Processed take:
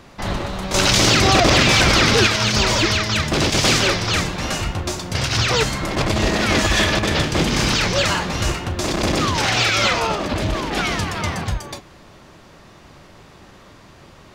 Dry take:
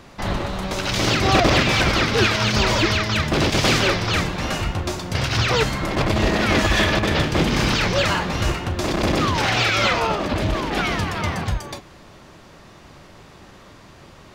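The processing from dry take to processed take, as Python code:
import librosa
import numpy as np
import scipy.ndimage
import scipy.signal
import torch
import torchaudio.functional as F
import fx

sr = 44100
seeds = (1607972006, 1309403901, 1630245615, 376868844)

y = fx.dynamic_eq(x, sr, hz=7500.0, q=0.7, threshold_db=-40.0, ratio=4.0, max_db=7)
y = fx.env_flatten(y, sr, amount_pct=70, at=(0.74, 2.27))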